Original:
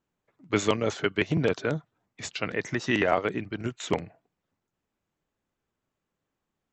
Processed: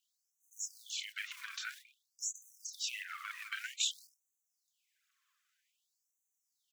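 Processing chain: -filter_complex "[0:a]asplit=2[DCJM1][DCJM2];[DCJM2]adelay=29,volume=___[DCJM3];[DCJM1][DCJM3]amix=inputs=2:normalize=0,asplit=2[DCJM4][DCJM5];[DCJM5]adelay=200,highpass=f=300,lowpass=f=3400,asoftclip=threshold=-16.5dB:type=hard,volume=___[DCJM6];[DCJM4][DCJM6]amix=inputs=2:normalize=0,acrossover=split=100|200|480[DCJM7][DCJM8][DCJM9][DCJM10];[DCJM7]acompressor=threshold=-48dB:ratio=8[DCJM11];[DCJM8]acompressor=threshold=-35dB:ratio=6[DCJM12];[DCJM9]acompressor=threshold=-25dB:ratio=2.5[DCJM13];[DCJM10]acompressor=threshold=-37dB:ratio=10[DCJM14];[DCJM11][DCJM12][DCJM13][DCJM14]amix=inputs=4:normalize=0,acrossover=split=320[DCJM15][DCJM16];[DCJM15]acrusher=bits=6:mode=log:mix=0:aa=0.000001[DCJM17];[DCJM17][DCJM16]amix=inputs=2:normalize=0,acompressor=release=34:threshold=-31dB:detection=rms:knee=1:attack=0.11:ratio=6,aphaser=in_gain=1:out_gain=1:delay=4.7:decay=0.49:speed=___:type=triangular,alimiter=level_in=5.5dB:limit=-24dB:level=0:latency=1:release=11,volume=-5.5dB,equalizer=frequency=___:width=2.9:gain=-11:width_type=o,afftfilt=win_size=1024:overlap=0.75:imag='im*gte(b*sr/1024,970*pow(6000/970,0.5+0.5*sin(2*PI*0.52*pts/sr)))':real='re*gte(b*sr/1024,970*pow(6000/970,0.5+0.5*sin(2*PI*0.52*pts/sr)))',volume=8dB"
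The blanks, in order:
-6dB, -27dB, 0.98, 270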